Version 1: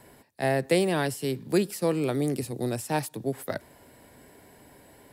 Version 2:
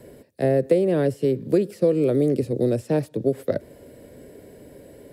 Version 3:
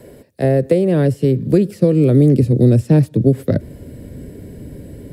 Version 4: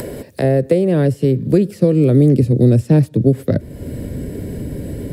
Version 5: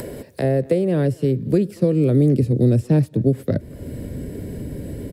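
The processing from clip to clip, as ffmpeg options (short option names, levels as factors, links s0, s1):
-filter_complex "[0:a]lowshelf=f=670:t=q:w=3:g=7.5,acrossover=split=590|2300|6200[s0][s1][s2][s3];[s0]acompressor=threshold=0.126:ratio=4[s4];[s1]acompressor=threshold=0.0447:ratio=4[s5];[s2]acompressor=threshold=0.00316:ratio=4[s6];[s3]acompressor=threshold=0.002:ratio=4[s7];[s4][s5][s6][s7]amix=inputs=4:normalize=0"
-af "asubboost=boost=6.5:cutoff=230,volume=1.78"
-af "acompressor=mode=upward:threshold=0.158:ratio=2.5"
-filter_complex "[0:a]asplit=2[s0][s1];[s1]adelay=230,highpass=300,lowpass=3400,asoftclip=type=hard:threshold=0.299,volume=0.0631[s2];[s0][s2]amix=inputs=2:normalize=0,volume=0.596"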